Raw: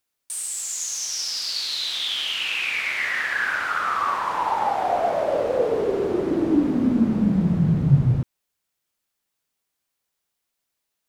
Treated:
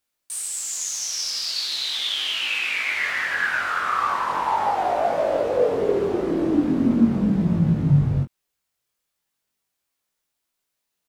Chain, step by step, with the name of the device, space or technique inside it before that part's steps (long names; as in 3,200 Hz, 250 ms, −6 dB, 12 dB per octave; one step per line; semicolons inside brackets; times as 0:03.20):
double-tracked vocal (double-tracking delay 22 ms −8 dB; chorus effect 0.39 Hz, delay 18.5 ms, depth 5.3 ms)
0:01.53–0:02.92: high-pass filter 150 Hz 12 dB per octave
level +3 dB